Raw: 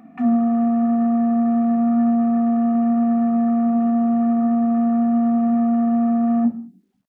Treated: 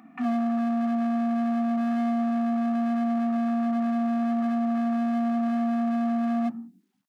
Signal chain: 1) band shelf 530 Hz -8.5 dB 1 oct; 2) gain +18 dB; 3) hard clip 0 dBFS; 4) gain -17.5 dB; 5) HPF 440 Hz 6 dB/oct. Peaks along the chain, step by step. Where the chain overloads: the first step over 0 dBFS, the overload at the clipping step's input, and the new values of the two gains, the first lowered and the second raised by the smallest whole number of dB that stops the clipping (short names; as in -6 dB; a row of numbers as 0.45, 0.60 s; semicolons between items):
-11.0, +7.0, 0.0, -17.5, -16.5 dBFS; step 2, 7.0 dB; step 2 +11 dB, step 4 -10.5 dB